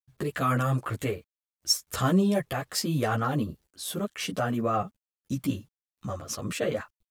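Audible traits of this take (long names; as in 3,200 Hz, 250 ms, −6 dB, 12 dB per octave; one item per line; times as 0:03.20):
a quantiser's noise floor 12 bits, dither none
a shimmering, thickened sound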